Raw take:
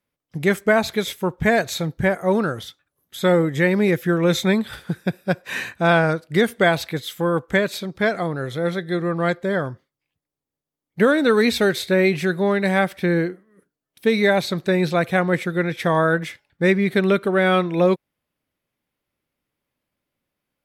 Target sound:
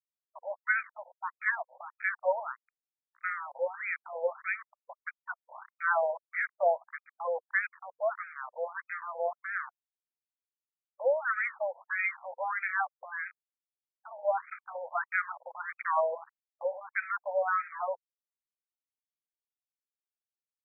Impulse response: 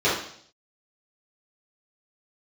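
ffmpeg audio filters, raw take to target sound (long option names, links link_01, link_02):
-af "aeval=exprs='val(0)*gte(abs(val(0)),0.0596)':channel_layout=same,afftfilt=real='re*between(b*sr/1024,670*pow(1800/670,0.5+0.5*sin(2*PI*1.6*pts/sr))/1.41,670*pow(1800/670,0.5+0.5*sin(2*PI*1.6*pts/sr))*1.41)':imag='im*between(b*sr/1024,670*pow(1800/670,0.5+0.5*sin(2*PI*1.6*pts/sr))/1.41,670*pow(1800/670,0.5+0.5*sin(2*PI*1.6*pts/sr))*1.41)':win_size=1024:overlap=0.75,volume=-5dB"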